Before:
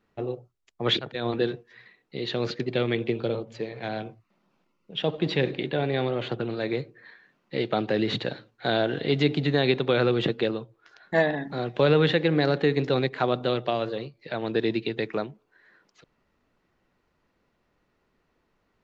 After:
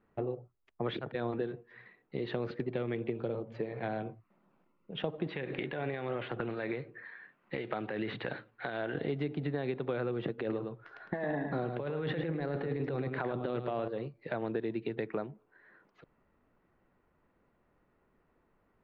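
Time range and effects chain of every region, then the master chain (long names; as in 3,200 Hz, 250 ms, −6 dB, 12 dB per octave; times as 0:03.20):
0:05.27–0:08.95: parametric band 2,200 Hz +9.5 dB 2.4 octaves + downward compressor 5 to 1, threshold −26 dBFS + shaped tremolo triangle 3.7 Hz, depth 55%
0:10.38–0:13.88: compressor whose output falls as the input rises −28 dBFS + single-tap delay 107 ms −7.5 dB
whole clip: low-pass filter 1,800 Hz 12 dB per octave; downward compressor, threshold −31 dBFS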